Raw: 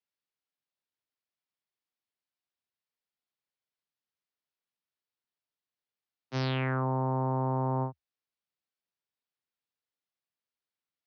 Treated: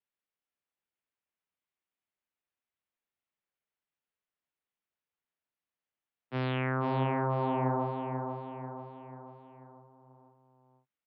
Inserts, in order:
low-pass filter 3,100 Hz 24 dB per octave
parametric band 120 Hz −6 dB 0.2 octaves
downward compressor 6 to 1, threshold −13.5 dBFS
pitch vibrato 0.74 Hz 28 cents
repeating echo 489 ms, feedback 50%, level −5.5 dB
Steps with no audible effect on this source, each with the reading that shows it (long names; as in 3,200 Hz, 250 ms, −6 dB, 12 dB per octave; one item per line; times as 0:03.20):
downward compressor, threshold −13.5 dBFS: peak of its input −20.5 dBFS